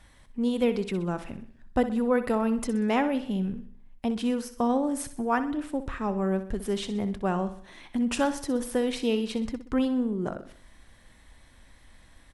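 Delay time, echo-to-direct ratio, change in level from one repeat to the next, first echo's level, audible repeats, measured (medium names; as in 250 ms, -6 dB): 63 ms, -11.5 dB, -6.5 dB, -12.5 dB, 4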